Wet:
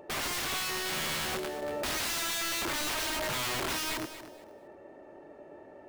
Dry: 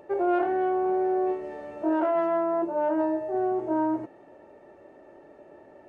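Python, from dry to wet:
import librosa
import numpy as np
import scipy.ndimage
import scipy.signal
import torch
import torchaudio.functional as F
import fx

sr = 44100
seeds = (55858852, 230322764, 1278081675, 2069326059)

p1 = (np.mod(10.0 ** (29.0 / 20.0) * x + 1.0, 2.0) - 1.0) / 10.0 ** (29.0 / 20.0)
p2 = p1 + fx.echo_feedback(p1, sr, ms=234, feedback_pct=22, wet_db=-12.5, dry=0)
y = fx.env_flatten(p2, sr, amount_pct=70, at=(1.62, 3.72))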